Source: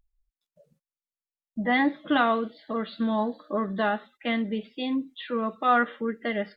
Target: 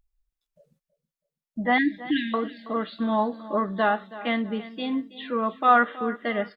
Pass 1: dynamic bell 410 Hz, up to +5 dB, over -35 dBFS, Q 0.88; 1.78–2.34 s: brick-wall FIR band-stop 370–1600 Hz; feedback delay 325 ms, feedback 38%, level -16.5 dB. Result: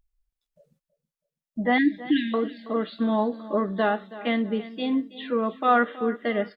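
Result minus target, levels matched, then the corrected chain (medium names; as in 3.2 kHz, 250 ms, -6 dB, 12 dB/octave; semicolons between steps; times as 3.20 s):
1 kHz band -2.5 dB
dynamic bell 1 kHz, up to +5 dB, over -35 dBFS, Q 0.88; 1.78–2.34 s: brick-wall FIR band-stop 370–1600 Hz; feedback delay 325 ms, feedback 38%, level -16.5 dB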